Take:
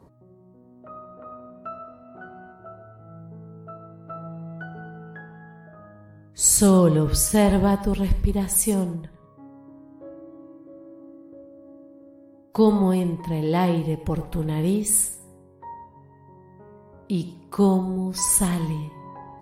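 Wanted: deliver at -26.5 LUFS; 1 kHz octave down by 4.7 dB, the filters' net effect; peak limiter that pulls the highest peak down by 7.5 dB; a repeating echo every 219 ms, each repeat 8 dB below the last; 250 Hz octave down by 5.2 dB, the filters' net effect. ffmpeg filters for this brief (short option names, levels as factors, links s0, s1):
-af "equalizer=f=250:t=o:g=-8,equalizer=f=1000:t=o:g=-5.5,alimiter=limit=0.2:level=0:latency=1,aecho=1:1:219|438|657|876|1095:0.398|0.159|0.0637|0.0255|0.0102,volume=0.891"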